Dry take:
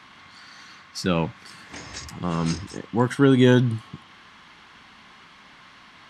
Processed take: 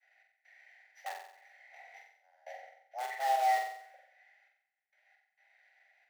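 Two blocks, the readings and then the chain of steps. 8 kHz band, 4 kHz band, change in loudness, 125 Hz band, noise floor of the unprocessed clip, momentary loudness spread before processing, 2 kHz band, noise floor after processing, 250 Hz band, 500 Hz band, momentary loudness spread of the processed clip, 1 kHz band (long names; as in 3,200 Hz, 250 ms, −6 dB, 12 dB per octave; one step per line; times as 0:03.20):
−13.0 dB, −16.5 dB, −11.5 dB, below −40 dB, −50 dBFS, 20 LU, −10.5 dB, −83 dBFS, below −40 dB, −19.0 dB, 22 LU, +0.5 dB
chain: samples sorted by size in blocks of 8 samples
pair of resonant band-passes 780 Hz, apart 2 octaves
in parallel at −6 dB: wrap-around overflow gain 26.5 dB
on the sum: downward expander −53 dBFS
gate pattern "x.xxx.xxx.." 67 BPM −24 dB
frequency shifter +390 Hz
on a send: flutter between parallel walls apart 7.8 metres, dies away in 0.68 s
on the sum: level −9 dB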